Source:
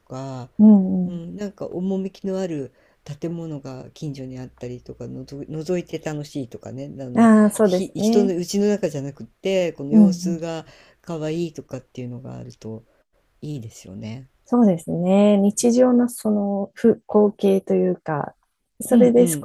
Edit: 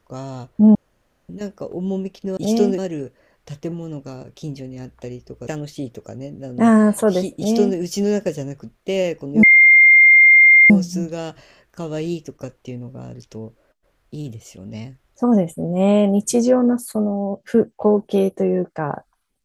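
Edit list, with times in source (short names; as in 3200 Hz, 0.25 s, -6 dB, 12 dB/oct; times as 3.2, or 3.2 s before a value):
0.75–1.29 room tone
5.06–6.04 cut
7.93–8.34 copy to 2.37
10 add tone 2110 Hz -6 dBFS 1.27 s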